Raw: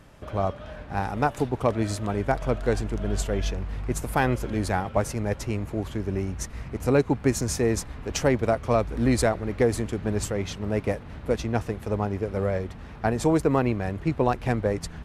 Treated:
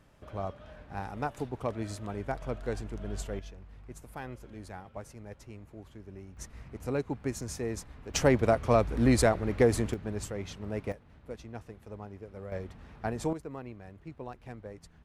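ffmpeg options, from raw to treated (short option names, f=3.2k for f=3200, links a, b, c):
-af "asetnsamples=n=441:p=0,asendcmd='3.39 volume volume -18.5dB;6.37 volume volume -11dB;8.14 volume volume -1.5dB;9.94 volume volume -9dB;10.92 volume volume -17dB;12.52 volume volume -9dB;13.33 volume volume -19.5dB',volume=-10dB"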